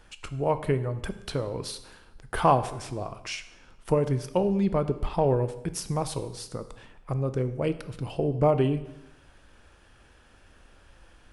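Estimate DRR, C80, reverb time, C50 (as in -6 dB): 11.0 dB, 15.5 dB, 0.95 s, 13.5 dB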